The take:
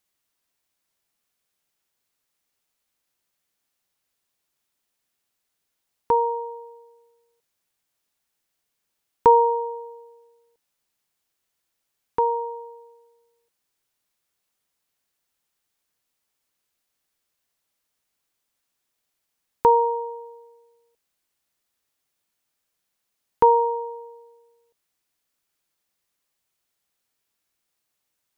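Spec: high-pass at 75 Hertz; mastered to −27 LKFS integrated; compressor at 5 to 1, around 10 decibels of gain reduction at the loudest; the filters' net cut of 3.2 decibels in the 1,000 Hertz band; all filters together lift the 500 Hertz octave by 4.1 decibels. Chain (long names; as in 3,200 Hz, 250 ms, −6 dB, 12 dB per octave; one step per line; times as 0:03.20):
high-pass filter 75 Hz
parametric band 500 Hz +5 dB
parametric band 1,000 Hz −4.5 dB
downward compressor 5 to 1, threshold −21 dBFS
level +1 dB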